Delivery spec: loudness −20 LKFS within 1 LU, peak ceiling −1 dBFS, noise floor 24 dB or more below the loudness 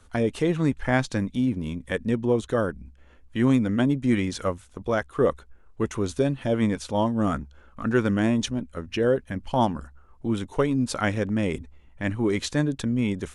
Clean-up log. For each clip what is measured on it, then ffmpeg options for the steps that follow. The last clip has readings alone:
integrated loudness −25.5 LKFS; sample peak −8.5 dBFS; target loudness −20.0 LKFS
→ -af "volume=5.5dB"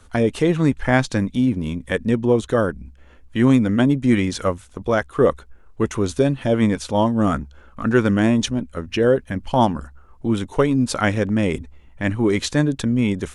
integrated loudness −20.0 LKFS; sample peak −3.0 dBFS; background noise floor −48 dBFS

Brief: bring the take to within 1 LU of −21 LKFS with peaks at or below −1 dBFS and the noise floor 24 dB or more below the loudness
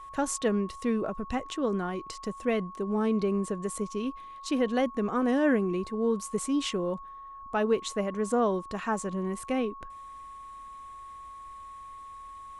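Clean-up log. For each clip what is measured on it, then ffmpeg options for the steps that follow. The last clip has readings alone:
interfering tone 1,100 Hz; level of the tone −42 dBFS; integrated loudness −29.5 LKFS; sample peak −14.0 dBFS; target loudness −21.0 LKFS
→ -af "bandreject=frequency=1100:width=30"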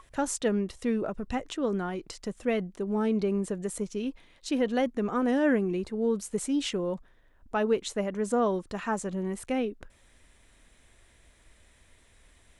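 interfering tone none found; integrated loudness −30.0 LKFS; sample peak −14.0 dBFS; target loudness −21.0 LKFS
→ -af "volume=9dB"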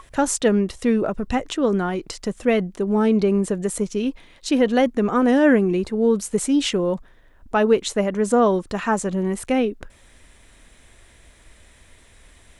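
integrated loudness −21.0 LKFS; sample peak −5.0 dBFS; background noise floor −52 dBFS

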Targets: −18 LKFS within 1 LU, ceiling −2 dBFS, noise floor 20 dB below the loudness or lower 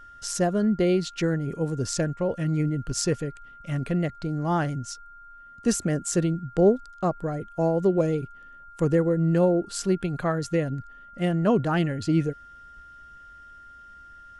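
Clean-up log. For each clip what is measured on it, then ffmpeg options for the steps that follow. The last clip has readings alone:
interfering tone 1,400 Hz; level of the tone −45 dBFS; integrated loudness −25.5 LKFS; sample peak −10.0 dBFS; target loudness −18.0 LKFS
→ -af "bandreject=frequency=1400:width=30"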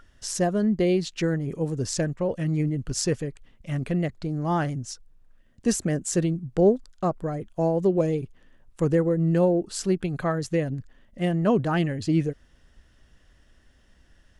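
interfering tone none found; integrated loudness −25.5 LKFS; sample peak −10.0 dBFS; target loudness −18.0 LKFS
→ -af "volume=7.5dB"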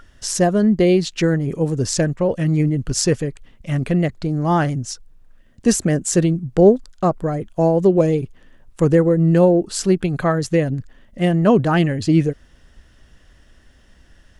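integrated loudness −18.0 LKFS; sample peak −2.5 dBFS; background noise floor −52 dBFS

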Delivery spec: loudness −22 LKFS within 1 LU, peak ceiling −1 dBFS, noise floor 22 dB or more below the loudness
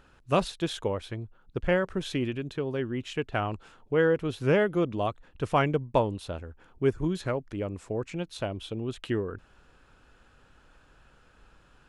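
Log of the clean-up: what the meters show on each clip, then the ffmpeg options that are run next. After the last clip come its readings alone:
integrated loudness −30.0 LKFS; sample peak −10.0 dBFS; target loudness −22.0 LKFS
→ -af "volume=8dB"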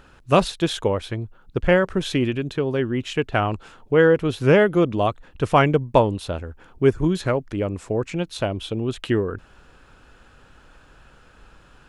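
integrated loudness −22.0 LKFS; sample peak −2.0 dBFS; background noise floor −52 dBFS

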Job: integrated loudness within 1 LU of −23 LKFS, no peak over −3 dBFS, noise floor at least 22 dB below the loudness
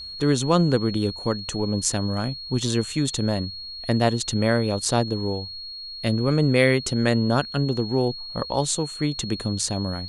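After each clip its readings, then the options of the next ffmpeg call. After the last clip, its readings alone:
interfering tone 4,300 Hz; level of the tone −34 dBFS; integrated loudness −23.5 LKFS; sample peak −4.5 dBFS; target loudness −23.0 LKFS
→ -af "bandreject=frequency=4300:width=30"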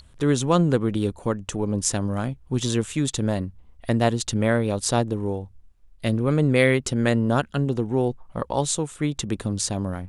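interfering tone none found; integrated loudness −24.0 LKFS; sample peak −4.5 dBFS; target loudness −23.0 LKFS
→ -af "volume=1dB"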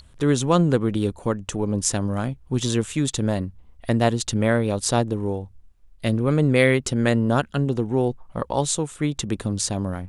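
integrated loudness −23.0 LKFS; sample peak −3.5 dBFS; background noise floor −51 dBFS

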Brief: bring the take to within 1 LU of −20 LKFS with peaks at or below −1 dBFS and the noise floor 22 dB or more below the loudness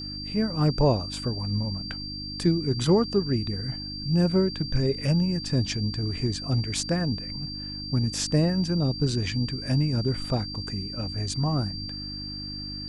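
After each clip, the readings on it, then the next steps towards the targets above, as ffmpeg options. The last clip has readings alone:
mains hum 50 Hz; hum harmonics up to 300 Hz; level of the hum −37 dBFS; interfering tone 4,700 Hz; level of the tone −35 dBFS; integrated loudness −26.5 LKFS; sample peak −10.0 dBFS; target loudness −20.0 LKFS
→ -af "bandreject=frequency=50:width_type=h:width=4,bandreject=frequency=100:width_type=h:width=4,bandreject=frequency=150:width_type=h:width=4,bandreject=frequency=200:width_type=h:width=4,bandreject=frequency=250:width_type=h:width=4,bandreject=frequency=300:width_type=h:width=4"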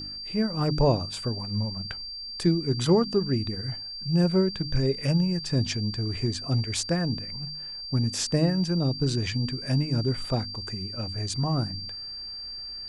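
mains hum none found; interfering tone 4,700 Hz; level of the tone −35 dBFS
→ -af "bandreject=frequency=4700:width=30"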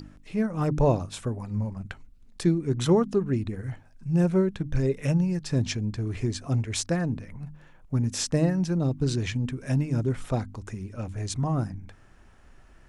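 interfering tone none found; integrated loudness −27.5 LKFS; sample peak −11.0 dBFS; target loudness −20.0 LKFS
→ -af "volume=7.5dB"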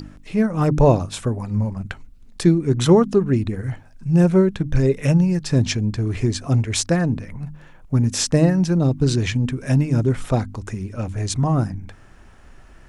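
integrated loudness −20.0 LKFS; sample peak −3.5 dBFS; background noise floor −46 dBFS

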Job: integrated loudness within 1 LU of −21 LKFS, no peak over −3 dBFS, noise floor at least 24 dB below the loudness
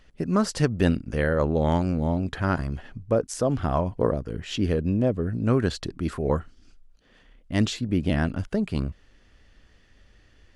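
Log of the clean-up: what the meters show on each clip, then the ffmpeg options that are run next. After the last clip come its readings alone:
integrated loudness −26.0 LKFS; sample peak −6.5 dBFS; target loudness −21.0 LKFS
→ -af "volume=5dB,alimiter=limit=-3dB:level=0:latency=1"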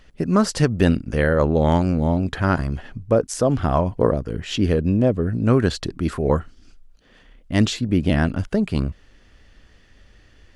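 integrated loudness −21.0 LKFS; sample peak −3.0 dBFS; background noise floor −53 dBFS

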